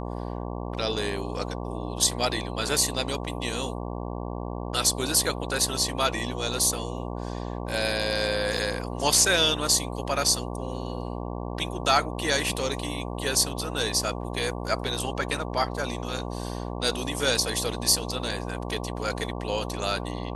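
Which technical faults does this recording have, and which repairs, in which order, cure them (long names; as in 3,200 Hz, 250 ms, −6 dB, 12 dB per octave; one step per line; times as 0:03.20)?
mains buzz 60 Hz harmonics 19 −33 dBFS
0:08.57: drop-out 4.2 ms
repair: hum removal 60 Hz, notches 19
repair the gap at 0:08.57, 4.2 ms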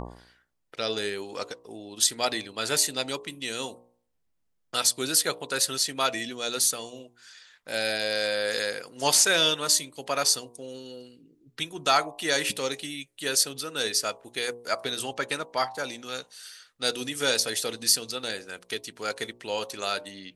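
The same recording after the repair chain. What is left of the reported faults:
none of them is left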